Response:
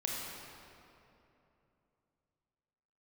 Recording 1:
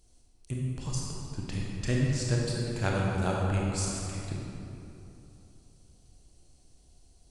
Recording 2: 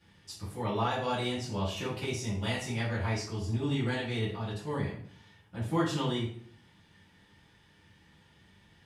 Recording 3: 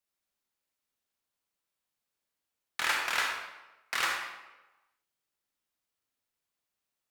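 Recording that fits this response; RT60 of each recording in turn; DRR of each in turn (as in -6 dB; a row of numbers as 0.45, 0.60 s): 1; 3.0, 0.60, 1.1 s; -3.0, -9.5, 0.5 dB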